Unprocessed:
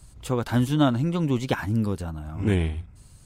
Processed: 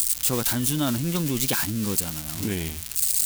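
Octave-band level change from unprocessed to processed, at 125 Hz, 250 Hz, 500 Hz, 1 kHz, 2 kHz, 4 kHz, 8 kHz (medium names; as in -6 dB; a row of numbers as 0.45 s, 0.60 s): -4.5 dB, -3.0 dB, -3.5 dB, -3.5 dB, +1.5 dB, +7.5 dB, +21.0 dB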